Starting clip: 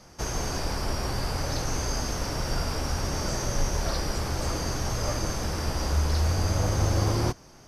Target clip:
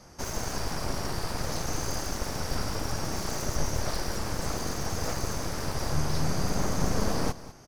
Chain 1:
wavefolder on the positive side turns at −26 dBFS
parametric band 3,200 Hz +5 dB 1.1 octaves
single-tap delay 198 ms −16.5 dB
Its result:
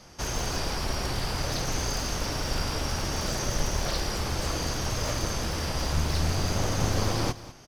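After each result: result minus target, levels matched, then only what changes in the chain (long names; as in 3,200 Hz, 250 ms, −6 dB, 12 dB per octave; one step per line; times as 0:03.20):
wavefolder on the positive side: distortion −13 dB; 4,000 Hz band +2.5 dB
change: wavefolder on the positive side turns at −36 dBFS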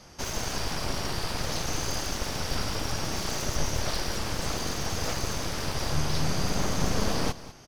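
4,000 Hz band +3.0 dB
change: parametric band 3,200 Hz −3.5 dB 1.1 octaves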